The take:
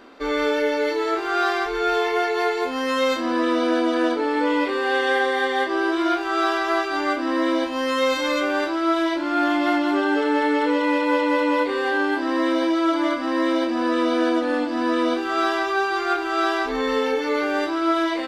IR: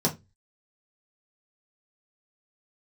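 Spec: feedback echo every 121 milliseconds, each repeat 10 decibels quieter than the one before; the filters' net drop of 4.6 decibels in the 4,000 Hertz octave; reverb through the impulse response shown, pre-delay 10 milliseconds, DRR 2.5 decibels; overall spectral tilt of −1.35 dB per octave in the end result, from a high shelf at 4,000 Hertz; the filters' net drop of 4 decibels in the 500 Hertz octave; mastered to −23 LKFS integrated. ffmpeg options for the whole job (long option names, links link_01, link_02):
-filter_complex "[0:a]equalizer=frequency=500:width_type=o:gain=-5,highshelf=frequency=4000:gain=3,equalizer=frequency=4000:width_type=o:gain=-7.5,aecho=1:1:121|242|363|484:0.316|0.101|0.0324|0.0104,asplit=2[link_01][link_02];[1:a]atrim=start_sample=2205,adelay=10[link_03];[link_02][link_03]afir=irnorm=-1:irlink=0,volume=-13dB[link_04];[link_01][link_04]amix=inputs=2:normalize=0,volume=-3dB"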